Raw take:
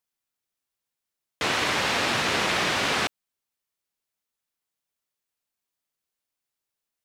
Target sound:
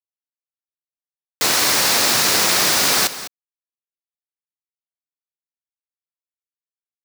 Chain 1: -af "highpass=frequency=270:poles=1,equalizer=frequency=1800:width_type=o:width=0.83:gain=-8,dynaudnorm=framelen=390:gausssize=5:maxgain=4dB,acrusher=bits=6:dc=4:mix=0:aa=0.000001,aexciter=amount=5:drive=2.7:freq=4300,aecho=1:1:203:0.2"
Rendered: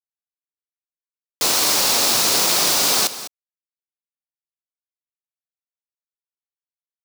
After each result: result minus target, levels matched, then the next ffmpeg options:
2,000 Hz band −5.0 dB; 125 Hz band −3.5 dB
-af "highpass=frequency=270:poles=1,dynaudnorm=framelen=390:gausssize=5:maxgain=4dB,acrusher=bits=6:dc=4:mix=0:aa=0.000001,aexciter=amount=5:drive=2.7:freq=4300,aecho=1:1:203:0.2"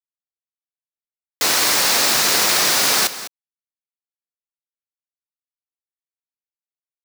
125 Hz band −4.0 dB
-af "highpass=frequency=120:poles=1,dynaudnorm=framelen=390:gausssize=5:maxgain=4dB,acrusher=bits=6:dc=4:mix=0:aa=0.000001,aexciter=amount=5:drive=2.7:freq=4300,aecho=1:1:203:0.2"

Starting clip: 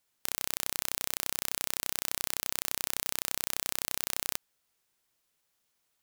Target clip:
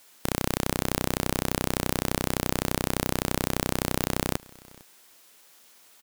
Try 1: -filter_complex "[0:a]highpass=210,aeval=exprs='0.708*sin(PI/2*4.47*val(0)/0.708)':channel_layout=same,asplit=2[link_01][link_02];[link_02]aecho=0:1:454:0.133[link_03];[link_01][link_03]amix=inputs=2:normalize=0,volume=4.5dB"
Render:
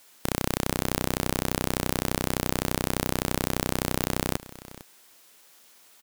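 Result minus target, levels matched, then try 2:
echo-to-direct +6.5 dB
-filter_complex "[0:a]highpass=210,aeval=exprs='0.708*sin(PI/2*4.47*val(0)/0.708)':channel_layout=same,asplit=2[link_01][link_02];[link_02]aecho=0:1:454:0.0631[link_03];[link_01][link_03]amix=inputs=2:normalize=0,volume=4.5dB"

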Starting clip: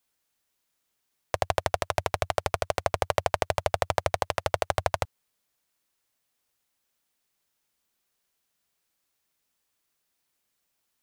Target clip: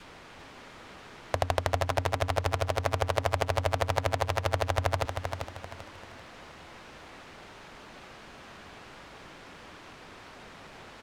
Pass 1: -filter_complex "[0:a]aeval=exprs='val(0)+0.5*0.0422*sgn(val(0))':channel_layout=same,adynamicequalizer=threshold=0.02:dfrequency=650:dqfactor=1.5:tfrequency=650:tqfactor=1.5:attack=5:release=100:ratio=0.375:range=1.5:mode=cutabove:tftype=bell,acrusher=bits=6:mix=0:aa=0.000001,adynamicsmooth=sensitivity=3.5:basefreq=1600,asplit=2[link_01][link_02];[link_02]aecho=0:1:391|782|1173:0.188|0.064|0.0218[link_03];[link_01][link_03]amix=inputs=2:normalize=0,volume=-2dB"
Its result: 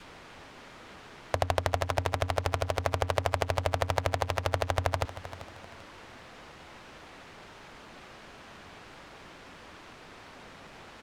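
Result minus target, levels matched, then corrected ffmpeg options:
echo-to-direct −8.5 dB
-filter_complex "[0:a]aeval=exprs='val(0)+0.5*0.0422*sgn(val(0))':channel_layout=same,adynamicequalizer=threshold=0.02:dfrequency=650:dqfactor=1.5:tfrequency=650:tqfactor=1.5:attack=5:release=100:ratio=0.375:range=1.5:mode=cutabove:tftype=bell,acrusher=bits=6:mix=0:aa=0.000001,adynamicsmooth=sensitivity=3.5:basefreq=1600,asplit=2[link_01][link_02];[link_02]aecho=0:1:391|782|1173|1564:0.501|0.17|0.0579|0.0197[link_03];[link_01][link_03]amix=inputs=2:normalize=0,volume=-2dB"

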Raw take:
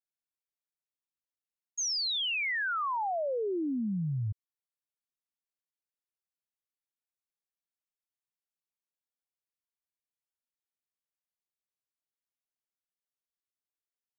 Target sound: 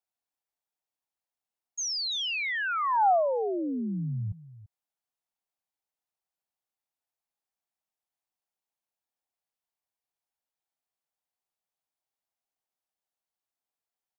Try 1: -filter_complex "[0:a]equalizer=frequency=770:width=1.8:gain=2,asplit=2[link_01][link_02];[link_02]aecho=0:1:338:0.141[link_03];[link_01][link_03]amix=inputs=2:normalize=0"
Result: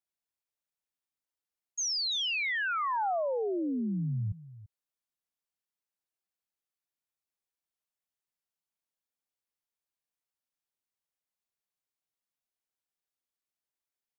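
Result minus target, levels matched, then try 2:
1,000 Hz band −4.0 dB
-filter_complex "[0:a]equalizer=frequency=770:width=1.8:gain=11,asplit=2[link_01][link_02];[link_02]aecho=0:1:338:0.141[link_03];[link_01][link_03]amix=inputs=2:normalize=0"

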